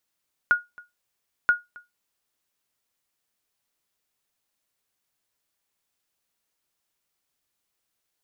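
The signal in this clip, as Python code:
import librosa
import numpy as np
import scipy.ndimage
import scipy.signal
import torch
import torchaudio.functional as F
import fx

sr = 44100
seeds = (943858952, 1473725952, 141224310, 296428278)

y = fx.sonar_ping(sr, hz=1440.0, decay_s=0.19, every_s=0.98, pings=2, echo_s=0.27, echo_db=-25.0, level_db=-10.5)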